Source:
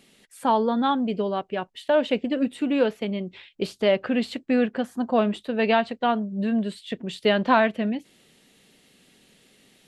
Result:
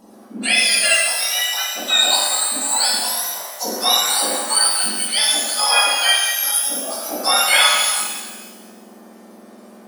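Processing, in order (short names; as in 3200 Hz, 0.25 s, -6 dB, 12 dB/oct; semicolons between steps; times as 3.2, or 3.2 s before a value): spectrum mirrored in octaves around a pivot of 1500 Hz; shimmer reverb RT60 1.3 s, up +12 st, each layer -8 dB, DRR -4.5 dB; gain +5.5 dB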